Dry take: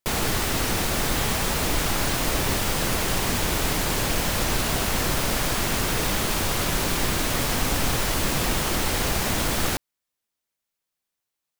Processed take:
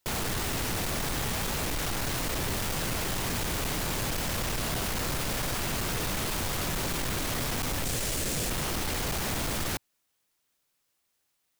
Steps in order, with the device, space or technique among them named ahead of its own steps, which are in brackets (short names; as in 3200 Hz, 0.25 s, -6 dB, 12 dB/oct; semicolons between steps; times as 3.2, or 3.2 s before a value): 7.84–8.5 graphic EQ 500/1000/8000 Hz +4/-7/+7 dB; open-reel tape (soft clip -28.5 dBFS, distortion -8 dB; bell 120 Hz +3 dB 1.19 oct; white noise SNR 46 dB)